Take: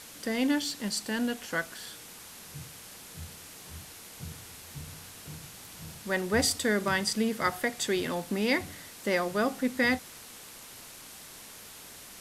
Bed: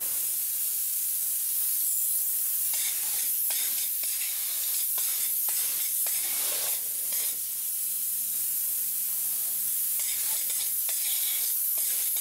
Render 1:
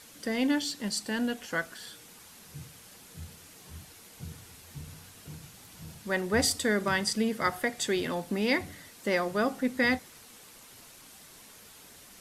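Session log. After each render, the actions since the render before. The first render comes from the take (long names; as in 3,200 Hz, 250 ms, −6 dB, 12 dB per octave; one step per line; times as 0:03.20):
broadband denoise 6 dB, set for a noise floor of −48 dBFS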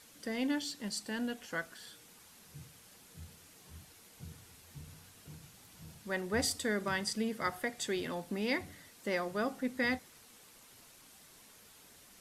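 level −6.5 dB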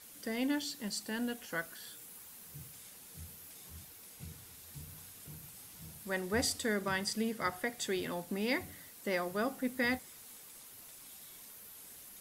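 mix in bed −26 dB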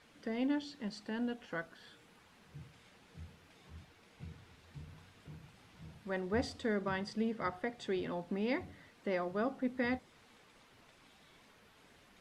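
low-pass filter 2,800 Hz 12 dB per octave
dynamic equaliser 1,900 Hz, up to −5 dB, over −52 dBFS, Q 1.2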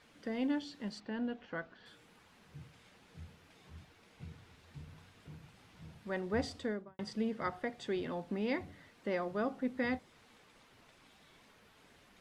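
0:01.00–0:01.86: high-frequency loss of the air 170 metres
0:06.56–0:06.99: fade out and dull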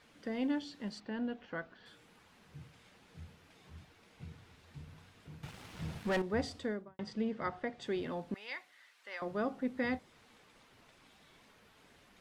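0:05.43–0:06.22: leveller curve on the samples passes 3
0:06.88–0:07.82: high-frequency loss of the air 72 metres
0:08.34–0:09.22: high-pass filter 1,300 Hz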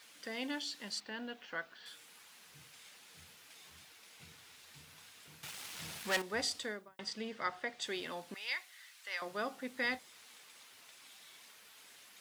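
spectral tilt +4.5 dB per octave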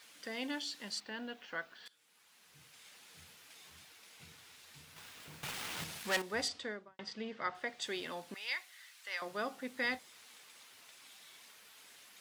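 0:01.88–0:03.01: fade in linear, from −20.5 dB
0:04.96–0:05.84: each half-wave held at its own peak
0:06.48–0:07.55: high-frequency loss of the air 110 metres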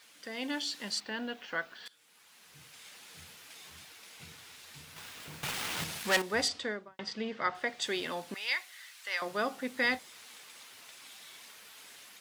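automatic gain control gain up to 6 dB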